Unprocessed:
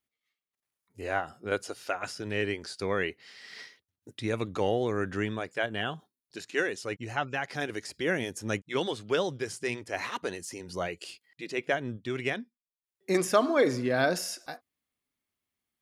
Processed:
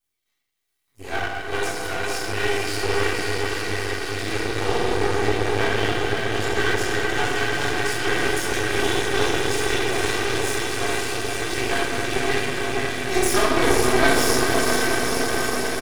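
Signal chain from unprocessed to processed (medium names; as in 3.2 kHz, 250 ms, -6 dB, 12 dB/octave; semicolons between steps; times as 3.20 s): backward echo that repeats 423 ms, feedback 82%, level -9.5 dB; treble shelf 3.8 kHz +10.5 dB; comb 2.6 ms, depth 69%; echo that smears into a reverb 492 ms, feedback 74%, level -4 dB; reverberation RT60 1.2 s, pre-delay 7 ms, DRR -8 dB; half-wave rectifier; trim -4.5 dB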